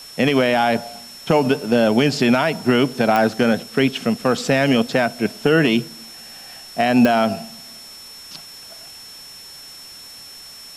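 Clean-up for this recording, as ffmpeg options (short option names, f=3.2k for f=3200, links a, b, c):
-af "adeclick=t=4,bandreject=f=5.4k:w=30,afwtdn=0.0079"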